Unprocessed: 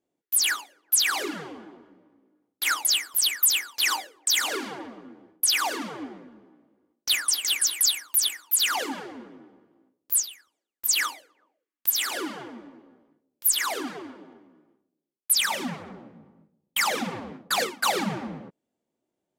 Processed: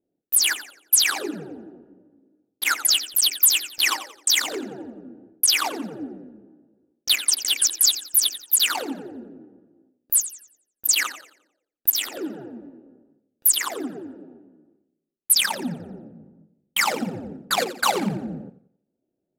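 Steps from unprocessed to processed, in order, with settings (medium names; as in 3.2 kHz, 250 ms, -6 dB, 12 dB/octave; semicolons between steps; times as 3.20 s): local Wiener filter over 41 samples; modulated delay 88 ms, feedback 36%, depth 88 cents, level -13.5 dB; trim +5 dB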